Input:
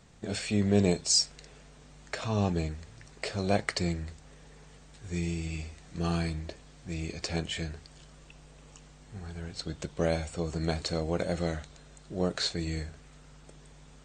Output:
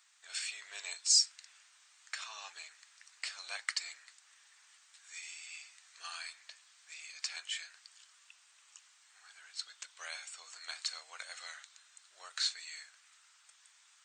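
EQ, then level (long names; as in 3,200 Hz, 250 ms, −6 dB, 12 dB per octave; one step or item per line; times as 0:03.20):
high-pass filter 1,200 Hz 24 dB per octave
high-shelf EQ 4,600 Hz +5.5 dB
−4.5 dB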